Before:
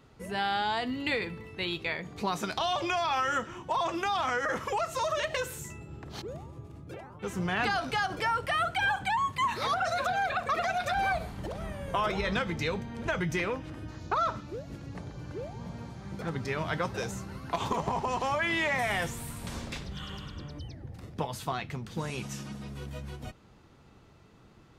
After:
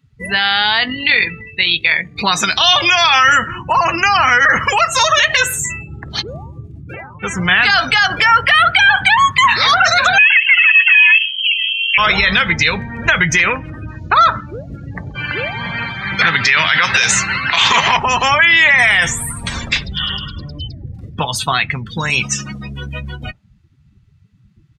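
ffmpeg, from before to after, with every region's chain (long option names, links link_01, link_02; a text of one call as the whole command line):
ffmpeg -i in.wav -filter_complex "[0:a]asettb=1/sr,asplit=3[link_01][link_02][link_03];[link_01]atrim=end=0.834[link_04];[link_02]atrim=start=0.83:end=2.19,asetpts=PTS-STARTPTS,afade=type=in:duration=0.004:curve=qsin,afade=type=out:start_time=1.356:duration=0.004:curve=qsin,aeval=exprs='sgn(val(0))*max(abs(val(0))-0.00126,0)':channel_layout=same,tremolo=f=45:d=0.462[link_05];[link_03]atrim=start=2.186[link_06];[link_04][link_05]acrossfade=duration=0.004:curve1=hsin:curve2=qsin[link_07];[link_07][link_06]acrossfade=duration=0.004:curve1=qsin:curve2=hsin,asettb=1/sr,asplit=3[link_08][link_09][link_10];[link_08]atrim=end=3.234[link_11];[link_09]atrim=start=3.23:end=4.7,asetpts=PTS-STARTPTS,afade=type=in:duration=0.004:curve=qsin,afade=type=out:start_time=1.466:duration=0.004:curve=qsin,asuperstop=centerf=3500:order=20:qfactor=4.5,bass=frequency=250:gain=5,treble=frequency=4000:gain=-1[link_12];[link_10]atrim=start=4.696[link_13];[link_11][link_12]acrossfade=duration=0.004:curve1=hsin:curve2=qsin[link_14];[link_14][link_13]acrossfade=duration=0.004:curve1=qsin:curve2=hsin,asettb=1/sr,asplit=3[link_15][link_16][link_17];[link_15]atrim=end=10.184[link_18];[link_16]atrim=start=10.18:end=11.98,asetpts=PTS-STARTPTS,afade=type=in:duration=0.004:curve=qsin,afade=type=out:start_time=1.796:duration=0.004:curve=qsin,lowshelf=frequency=210:gain=-11.5,adynamicsmooth=sensitivity=1.5:basefreq=670,lowpass=frequency=2800:width_type=q:width=0.5098,lowpass=frequency=2800:width_type=q:width=0.6013,lowpass=frequency=2800:width_type=q:width=0.9,lowpass=frequency=2800:width_type=q:width=2.563,afreqshift=-3300[link_19];[link_17]atrim=start=11.976[link_20];[link_18][link_19]acrossfade=duration=0.004:curve1=hsin:curve2=qsin[link_21];[link_21][link_20]acrossfade=duration=0.004:curve1=qsin:curve2=hsin,asettb=1/sr,asplit=3[link_22][link_23][link_24];[link_22]atrim=end=15.154[link_25];[link_23]atrim=start=15.15:end=17.97,asetpts=PTS-STARTPTS,afade=type=in:duration=0.004:curve=qsin,afade=type=out:start_time=2.816:duration=0.004:curve=qsin,highpass=81,equalizer=frequency=2500:width=0.41:gain=12.5[link_26];[link_24]atrim=start=17.966[link_27];[link_25][link_26]acrossfade=duration=0.004:curve1=hsin:curve2=qsin[link_28];[link_28][link_27]acrossfade=duration=0.004:curve1=qsin:curve2=hsin,afftdn=noise_reduction=32:noise_floor=-44,firequalizer=gain_entry='entry(110,0);entry(360,-6);entry(1800,13)':delay=0.05:min_phase=1,alimiter=level_in=15dB:limit=-1dB:release=50:level=0:latency=1,volume=-1dB" out.wav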